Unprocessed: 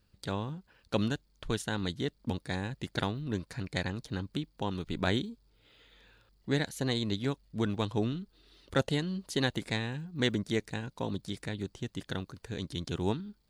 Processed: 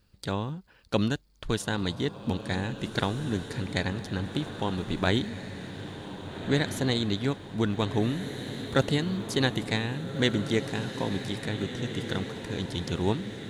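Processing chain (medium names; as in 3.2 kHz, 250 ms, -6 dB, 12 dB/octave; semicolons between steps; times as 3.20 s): echo that smears into a reverb 1637 ms, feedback 58%, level -9 dB; 8.19–9.38 s: crackle 140 per s -52 dBFS; trim +4 dB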